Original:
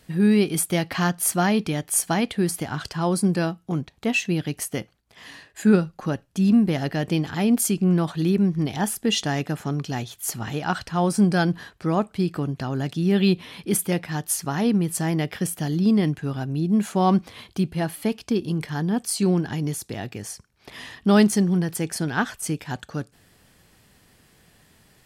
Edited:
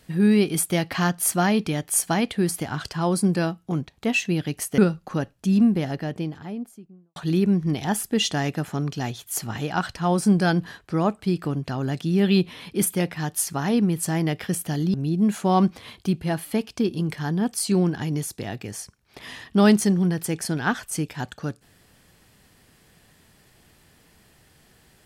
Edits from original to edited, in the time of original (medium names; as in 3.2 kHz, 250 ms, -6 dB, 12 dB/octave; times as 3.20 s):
4.78–5.70 s: delete
6.26–8.08 s: studio fade out
15.86–16.45 s: delete